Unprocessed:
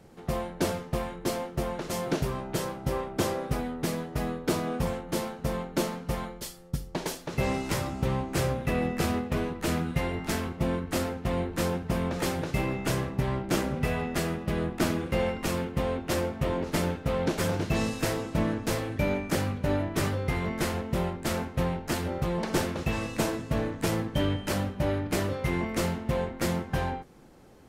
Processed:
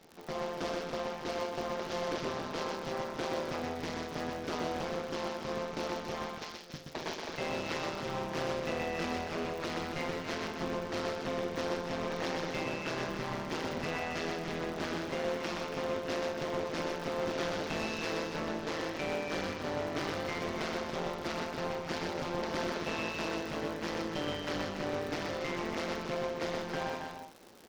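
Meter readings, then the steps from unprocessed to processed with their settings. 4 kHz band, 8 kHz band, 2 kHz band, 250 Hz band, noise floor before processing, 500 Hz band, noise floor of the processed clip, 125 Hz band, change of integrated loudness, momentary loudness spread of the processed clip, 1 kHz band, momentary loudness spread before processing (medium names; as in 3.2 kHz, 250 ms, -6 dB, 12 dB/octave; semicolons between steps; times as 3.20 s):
-2.0 dB, -9.5 dB, -2.5 dB, -8.5 dB, -44 dBFS, -4.0 dB, -43 dBFS, -14.0 dB, -6.0 dB, 3 LU, -3.0 dB, 4 LU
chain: CVSD coder 32 kbps; high-pass 200 Hz 12 dB/octave; crackle 80 per s -39 dBFS; in parallel at +2 dB: peak limiter -25 dBFS, peak gain reduction 10 dB; on the sum: overload inside the chain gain 21.5 dB; bass shelf 330 Hz -4.5 dB; AM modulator 160 Hz, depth 65%; on a send: multi-tap echo 124/281 ms -3.5/-7.5 dB; on the sum: trim -5.5 dB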